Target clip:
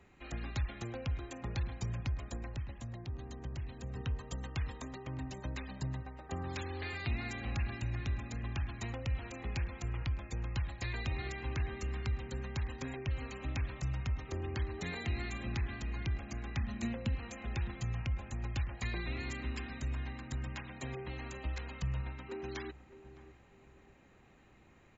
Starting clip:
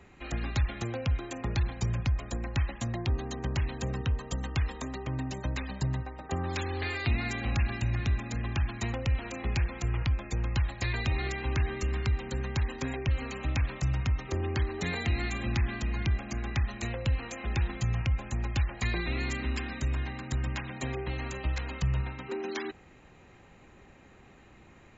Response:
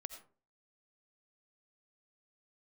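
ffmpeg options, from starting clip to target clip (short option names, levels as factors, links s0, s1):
-filter_complex "[0:a]asettb=1/sr,asplit=3[s0][s1][s2];[s0]atrim=end=2.544[s3];[s1]atrim=start=2.54:end=3.96,asetpts=PTS-STARTPTS,afade=t=in:d=0.004:c=qsin,afade=t=out:st=1.416:d=0.004:c=qsin,acrossover=split=120|680|2900[s4][s5][s6][s7];[s4]acompressor=threshold=0.0282:ratio=4[s8];[s5]acompressor=threshold=0.00891:ratio=4[s9];[s6]acompressor=threshold=0.00282:ratio=4[s10];[s7]acompressor=threshold=0.00282:ratio=4[s11];[s8][s9][s10][s11]amix=inputs=4:normalize=0[s12];[s2]atrim=start=3.956[s13];[s3][s12]acrossfade=d=0.004:c1=hsin:c2=qsin[s14];[s14][s13]acrossfade=d=0.004:c1=qsin:c2=hsin,asettb=1/sr,asplit=3[s15][s16][s17];[s15]atrim=end=16.574[s18];[s16]atrim=start=16.57:end=17.15,asetpts=PTS-STARTPTS,afade=t=in:d=0.004:c=qsin,afade=t=out:st=0.576:d=0.004:c=qsin,equalizer=f=230:t=o:w=0.44:g=13.5[s19];[s17]atrim=start=17.146[s20];[s18][s19]acrossfade=d=0.004:c1=hsin:c2=qsin[s21];[s21][s20]acrossfade=d=0.004:c1=qsin:c2=hsin,asplit=2[s22][s23];[s23]adelay=609,lowpass=f=820:p=1,volume=0.224,asplit=2[s24][s25];[s25]adelay=609,lowpass=f=820:p=1,volume=0.35,asplit=2[s26][s27];[s27]adelay=609,lowpass=f=820:p=1,volume=0.35[s28];[s24][s26][s28]amix=inputs=3:normalize=0[s29];[s22][s29]amix=inputs=2:normalize=0,volume=0.422"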